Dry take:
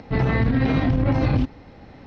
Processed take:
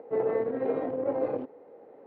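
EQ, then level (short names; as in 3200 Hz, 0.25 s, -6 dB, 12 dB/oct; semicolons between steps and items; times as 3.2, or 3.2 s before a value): ladder band-pass 510 Hz, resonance 65%; +5.5 dB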